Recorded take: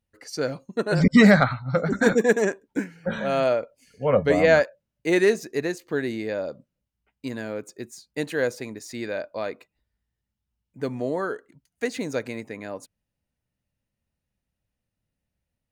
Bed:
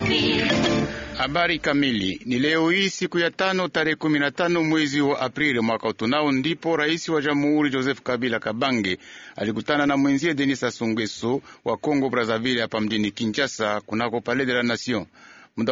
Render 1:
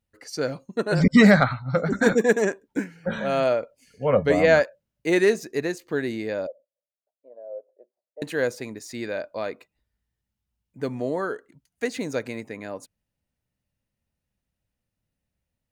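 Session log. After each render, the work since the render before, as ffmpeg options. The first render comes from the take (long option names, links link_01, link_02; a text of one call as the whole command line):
ffmpeg -i in.wav -filter_complex "[0:a]asettb=1/sr,asplit=3[link_01][link_02][link_03];[link_01]atrim=end=6.474[link_04];[link_02]atrim=start=6.47:end=8.22,asetpts=PTS-STARTPTS,afade=type=in:duration=0.004:curve=qsin,afade=type=out:start_time=1.746:duration=0.004:curve=qsin,asuperpass=centerf=590:order=4:qfactor=3.7[link_05];[link_03]atrim=start=8.216[link_06];[link_04][link_05]acrossfade=duration=0.004:curve1=hsin:curve2=qsin[link_07];[link_07][link_06]acrossfade=duration=0.004:curve1=qsin:curve2=hsin" out.wav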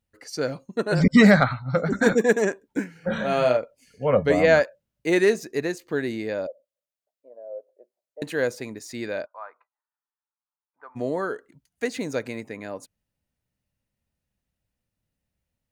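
ffmpeg -i in.wav -filter_complex "[0:a]asettb=1/sr,asplit=3[link_01][link_02][link_03];[link_01]atrim=end=2.924[link_04];[link_02]atrim=start=2.92:end=3.57,asetpts=PTS-STARTPTS,afade=type=in:duration=0.004:curve=qsin,afade=type=out:start_time=0.646:duration=0.004:curve=qsin,asplit=2[link_05][link_06];[link_06]adelay=32,volume=-3.5dB[link_07];[link_05][link_07]amix=inputs=2:normalize=0,atrim=end_sample=28665[link_08];[link_03]atrim=start=3.566[link_09];[link_04][link_08]acrossfade=duration=0.004:curve1=hsin:curve2=qsin[link_10];[link_10][link_09]acrossfade=duration=0.004:curve1=qsin:curve2=hsin,asplit=3[link_11][link_12][link_13];[link_11]afade=type=out:start_time=9.25:duration=0.02[link_14];[link_12]asuperpass=centerf=1100:order=4:qfactor=1.9,afade=type=in:start_time=9.25:duration=0.02,afade=type=out:start_time=10.95:duration=0.02[link_15];[link_13]afade=type=in:start_time=10.95:duration=0.02[link_16];[link_14][link_15][link_16]amix=inputs=3:normalize=0" out.wav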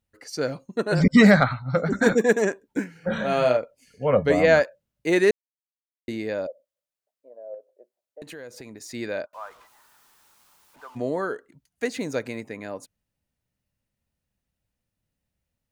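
ffmpeg -i in.wav -filter_complex "[0:a]asettb=1/sr,asplit=3[link_01][link_02][link_03];[link_01]atrim=end=7.544[link_04];[link_02]atrim=start=7.54:end=8.81,asetpts=PTS-STARTPTS,afade=type=in:duration=0.004:curve=qsin,afade=type=out:start_time=1.266:duration=0.004:curve=qsin,acompressor=threshold=-37dB:ratio=6:attack=3.2:release=140:knee=1:detection=peak[link_05];[link_03]atrim=start=8.806[link_06];[link_04][link_05]acrossfade=duration=0.004:curve1=hsin:curve2=qsin[link_07];[link_07][link_06]acrossfade=duration=0.004:curve1=qsin:curve2=hsin,asettb=1/sr,asplit=3[link_08][link_09][link_10];[link_08]atrim=end=9.334[link_11];[link_09]atrim=start=9.33:end=10.98,asetpts=PTS-STARTPTS,afade=type=in:duration=0.004:curve=qsin,afade=type=out:start_time=1.646:duration=0.004:curve=qsin,aeval=exprs='val(0)+0.5*0.00355*sgn(val(0))':channel_layout=same[link_12];[link_10]atrim=start=10.976[link_13];[link_11][link_12]acrossfade=duration=0.004:curve1=hsin:curve2=qsin[link_14];[link_14][link_13]acrossfade=duration=0.004:curve1=qsin:curve2=hsin,asplit=3[link_15][link_16][link_17];[link_15]atrim=end=5.31,asetpts=PTS-STARTPTS,afade=type=out:start_time=5.306:duration=0.004:curve=hsin[link_18];[link_16]atrim=start=5.31:end=6.08,asetpts=PTS-STARTPTS,volume=0[link_19];[link_17]atrim=start=6.08,asetpts=PTS-STARTPTS,afade=type=in:duration=0.004:curve=hsin[link_20];[link_18][link_19][link_20]concat=n=3:v=0:a=1" out.wav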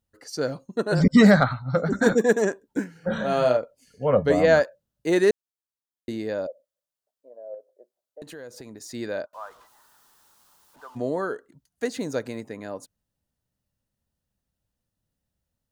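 ffmpeg -i in.wav -af "equalizer=frequency=2300:width=2.7:gain=-8" out.wav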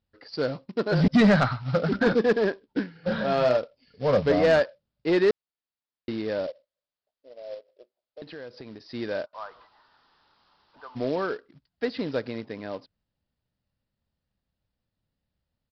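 ffmpeg -i in.wav -af "aresample=11025,acrusher=bits=4:mode=log:mix=0:aa=0.000001,aresample=44100,asoftclip=type=tanh:threshold=-13dB" out.wav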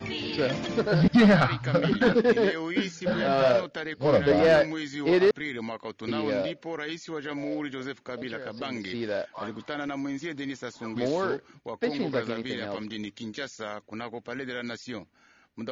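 ffmpeg -i in.wav -i bed.wav -filter_complex "[1:a]volume=-12.5dB[link_01];[0:a][link_01]amix=inputs=2:normalize=0" out.wav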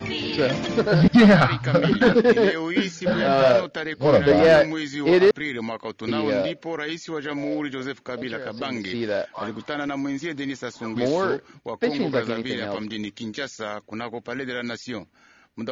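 ffmpeg -i in.wav -af "volume=5dB" out.wav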